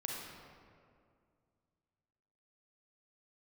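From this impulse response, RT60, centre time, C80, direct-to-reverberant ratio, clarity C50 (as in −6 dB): 2.2 s, 104 ms, 1.5 dB, −2.0 dB, −1.0 dB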